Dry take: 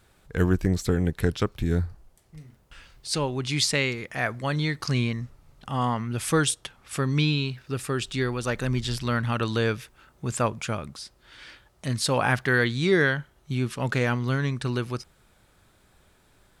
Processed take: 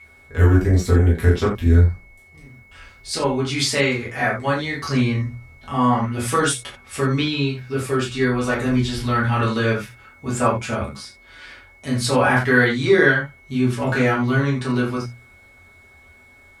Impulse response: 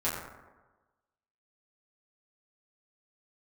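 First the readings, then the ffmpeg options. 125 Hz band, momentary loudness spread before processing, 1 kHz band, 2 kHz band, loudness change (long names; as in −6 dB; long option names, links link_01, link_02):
+6.5 dB, 13 LU, +7.5 dB, +6.5 dB, +6.5 dB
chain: -filter_complex "[0:a]bandreject=frequency=60:width_type=h:width=6,bandreject=frequency=120:width_type=h:width=6,bandreject=frequency=180:width_type=h:width=6,bandreject=frequency=240:width_type=h:width=6,aeval=exprs='val(0)+0.00562*sin(2*PI*2200*n/s)':channel_layout=same[link_01];[1:a]atrim=start_sample=2205,atrim=end_sample=4410[link_02];[link_01][link_02]afir=irnorm=-1:irlink=0,volume=-1dB"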